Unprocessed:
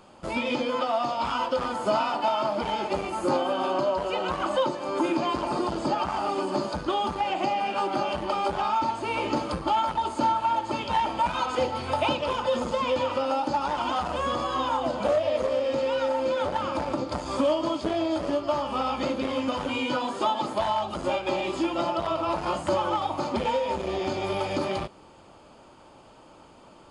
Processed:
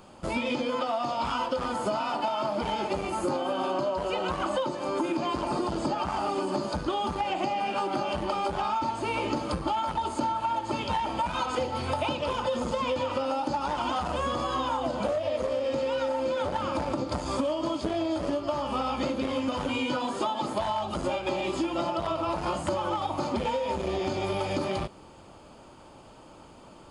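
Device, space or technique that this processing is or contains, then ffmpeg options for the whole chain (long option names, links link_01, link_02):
ASMR close-microphone chain: -af "lowshelf=frequency=240:gain=5,acompressor=threshold=-25dB:ratio=6,highshelf=frequency=8600:gain=6.5"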